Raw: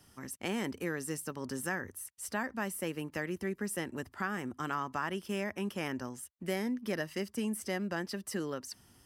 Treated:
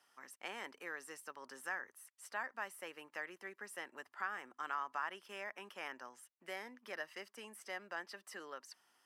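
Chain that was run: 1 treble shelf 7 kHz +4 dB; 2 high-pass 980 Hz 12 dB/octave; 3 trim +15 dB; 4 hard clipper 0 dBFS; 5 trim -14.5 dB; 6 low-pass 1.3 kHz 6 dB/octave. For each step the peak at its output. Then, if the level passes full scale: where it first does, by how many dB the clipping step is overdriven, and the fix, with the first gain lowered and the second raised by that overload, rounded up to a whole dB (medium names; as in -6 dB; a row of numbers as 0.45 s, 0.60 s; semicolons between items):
-20.0 dBFS, -21.0 dBFS, -6.0 dBFS, -6.0 dBFS, -20.5 dBFS, -26.0 dBFS; nothing clips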